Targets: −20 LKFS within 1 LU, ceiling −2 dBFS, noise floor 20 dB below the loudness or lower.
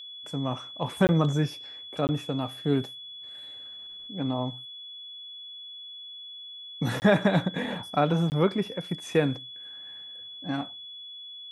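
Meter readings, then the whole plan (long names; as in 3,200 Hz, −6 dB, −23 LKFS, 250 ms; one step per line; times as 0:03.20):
number of dropouts 4; longest dropout 19 ms; interfering tone 3,400 Hz; level of the tone −40 dBFS; integrated loudness −28.0 LKFS; sample peak −8.5 dBFS; target loudness −20.0 LKFS
→ repair the gap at 0:01.07/0:02.07/0:07.00/0:08.30, 19 ms
notch filter 3,400 Hz, Q 30
level +8 dB
brickwall limiter −2 dBFS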